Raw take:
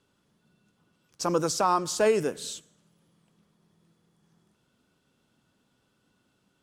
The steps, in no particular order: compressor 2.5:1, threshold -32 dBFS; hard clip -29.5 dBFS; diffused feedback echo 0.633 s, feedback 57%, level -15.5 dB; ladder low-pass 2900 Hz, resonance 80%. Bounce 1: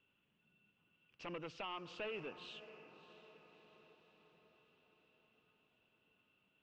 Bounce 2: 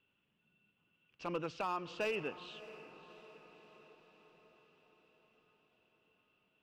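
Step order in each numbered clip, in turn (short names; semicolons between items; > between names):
compressor > diffused feedback echo > hard clip > ladder low-pass; ladder low-pass > compressor > hard clip > diffused feedback echo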